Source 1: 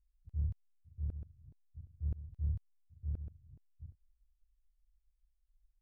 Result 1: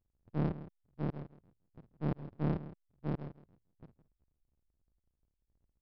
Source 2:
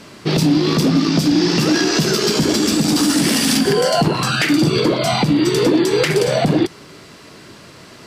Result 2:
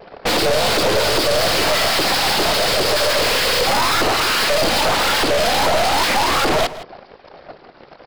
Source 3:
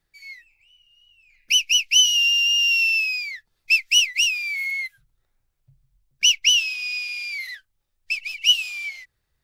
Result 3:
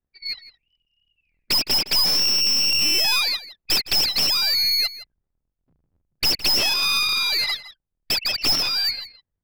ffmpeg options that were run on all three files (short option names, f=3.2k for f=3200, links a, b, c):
-filter_complex "[0:a]anlmdn=10,aresample=11025,aeval=exprs='abs(val(0))':c=same,aresample=44100,asplit=2[a][b];[b]highpass=f=720:p=1,volume=32dB,asoftclip=type=tanh:threshold=-6dB[c];[a][c]amix=inputs=2:normalize=0,lowpass=f=1.6k:p=1,volume=-6dB,crystalizer=i=2.5:c=0,asplit=2[d][e];[e]adelay=163.3,volume=-15dB,highshelf=f=4k:g=-3.67[f];[d][f]amix=inputs=2:normalize=0,volume=-4dB"